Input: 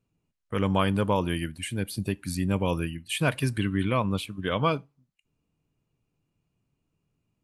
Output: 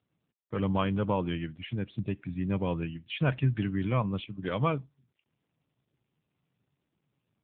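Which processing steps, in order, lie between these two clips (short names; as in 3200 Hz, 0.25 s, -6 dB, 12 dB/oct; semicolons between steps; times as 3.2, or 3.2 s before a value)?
bell 130 Hz +6.5 dB 0.42 oct; gain -3.5 dB; AMR-NB 7.95 kbps 8000 Hz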